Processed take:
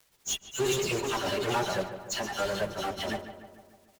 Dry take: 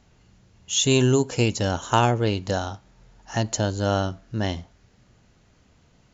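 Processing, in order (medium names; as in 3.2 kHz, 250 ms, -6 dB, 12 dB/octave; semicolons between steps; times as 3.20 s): slices played last to first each 99 ms, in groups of 4; bass shelf 120 Hz -11.5 dB; hum notches 50/100/150/200/250/300/350/400 Hz; comb 5.1 ms, depth 52%; phase dispersion lows, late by 127 ms, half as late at 2.3 kHz; valve stage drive 18 dB, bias 0.65; crackle 280 per s -45 dBFS; flange 0.75 Hz, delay 1.8 ms, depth 1.3 ms, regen -43%; in parallel at -11 dB: fuzz box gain 42 dB, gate -49 dBFS; on the sum: plain phase-vocoder stretch 0.65×; on a send: filtered feedback delay 149 ms, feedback 59%, low-pass 2.5 kHz, level -10.5 dB; on the sum: trim -4 dB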